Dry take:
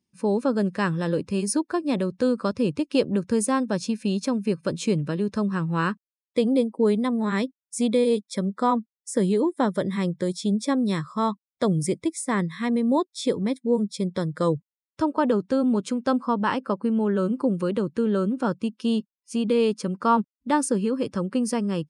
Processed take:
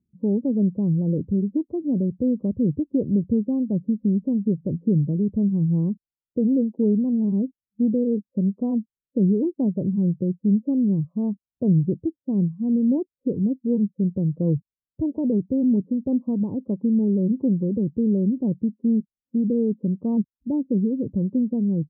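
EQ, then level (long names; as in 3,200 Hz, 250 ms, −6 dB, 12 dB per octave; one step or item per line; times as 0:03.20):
Gaussian smoothing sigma 18 samples
high-frequency loss of the air 270 metres
low-shelf EQ 210 Hz +11.5 dB
0.0 dB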